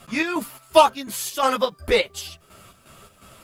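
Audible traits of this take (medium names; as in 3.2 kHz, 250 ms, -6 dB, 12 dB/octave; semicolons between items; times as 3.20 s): chopped level 2.8 Hz, depth 60%, duty 60%; a quantiser's noise floor 12-bit, dither none; a shimmering, thickened sound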